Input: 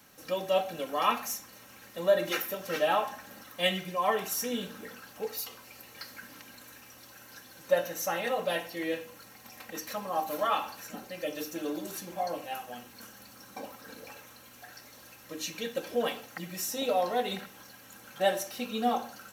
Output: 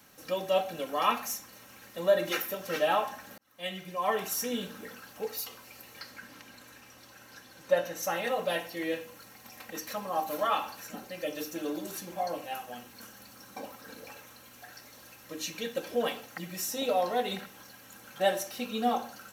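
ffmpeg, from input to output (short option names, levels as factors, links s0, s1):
-filter_complex "[0:a]asettb=1/sr,asplit=3[s0][s1][s2];[s0]atrim=end=5.994[s3];[s1]atrim=start=5.99:end=8.03,asetpts=PTS-STARTPTS,afade=t=in:d=0.004:c=qsin,afade=t=out:st=2.036:d=0.004:c=qsin,highshelf=f=9600:g=-9[s4];[s2]atrim=start=8.026[s5];[s3][s4]acrossfade=d=0.004:c1=hsin:c2=qsin[s6];[s6][s5]acrossfade=d=0.004:c1=qsin:c2=hsin,asplit=2[s7][s8];[s7]atrim=end=3.38,asetpts=PTS-STARTPTS,afade=t=out:st=3.376:d=0.004:c=hsin[s9];[s8]atrim=start=3.38,asetpts=PTS-STARTPTS,afade=t=in:d=0.83[s10];[s9][s10]concat=n=2:v=0:a=1"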